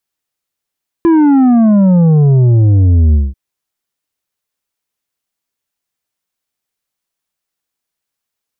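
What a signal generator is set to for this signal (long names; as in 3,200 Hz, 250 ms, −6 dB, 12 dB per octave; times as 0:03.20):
bass drop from 340 Hz, over 2.29 s, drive 7 dB, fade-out 0.20 s, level −6 dB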